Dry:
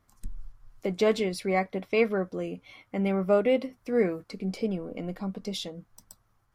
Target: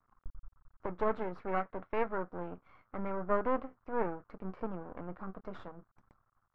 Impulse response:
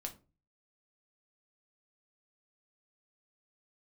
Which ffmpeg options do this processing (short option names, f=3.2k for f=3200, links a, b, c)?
-af "aeval=exprs='max(val(0),0)':c=same,lowpass=f=1.3k:t=q:w=3.2,volume=-6dB"